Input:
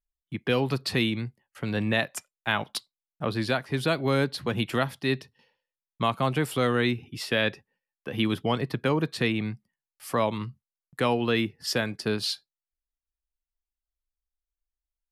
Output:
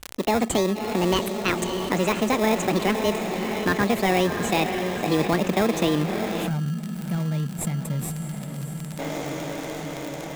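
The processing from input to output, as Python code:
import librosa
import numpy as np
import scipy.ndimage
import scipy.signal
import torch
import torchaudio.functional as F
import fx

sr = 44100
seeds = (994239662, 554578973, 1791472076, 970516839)

p1 = fx.speed_glide(x, sr, from_pct=174, to_pct=118)
p2 = scipy.signal.sosfilt(scipy.signal.butter(2, 10000.0, 'lowpass', fs=sr, output='sos'), p1)
p3 = fx.peak_eq(p2, sr, hz=5200.0, db=-14.5, octaves=0.51)
p4 = fx.echo_diffused(p3, sr, ms=622, feedback_pct=60, wet_db=-11.5)
p5 = fx.spec_box(p4, sr, start_s=6.47, length_s=2.52, low_hz=250.0, high_hz=7300.0, gain_db=-21)
p6 = fx.sample_hold(p5, sr, seeds[0], rate_hz=1500.0, jitter_pct=0)
p7 = p5 + (p6 * librosa.db_to_amplitude(-3.0))
p8 = fx.dmg_crackle(p7, sr, seeds[1], per_s=46.0, level_db=-36.0)
y = fx.env_flatten(p8, sr, amount_pct=50)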